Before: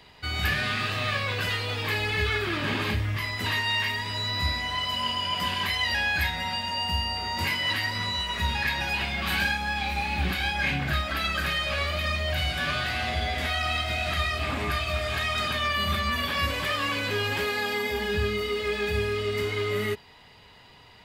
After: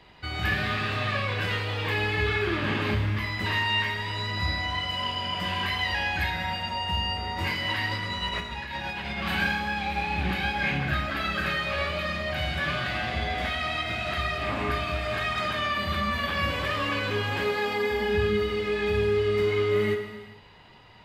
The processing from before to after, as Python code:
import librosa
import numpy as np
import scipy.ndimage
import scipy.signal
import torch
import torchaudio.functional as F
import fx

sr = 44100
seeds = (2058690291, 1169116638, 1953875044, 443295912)

y = fx.high_shelf(x, sr, hz=4500.0, db=-12.0)
y = fx.over_compress(y, sr, threshold_db=-33.0, ratio=-0.5, at=(7.91, 9.19))
y = fx.rev_gated(y, sr, seeds[0], gate_ms=480, shape='falling', drr_db=4.0)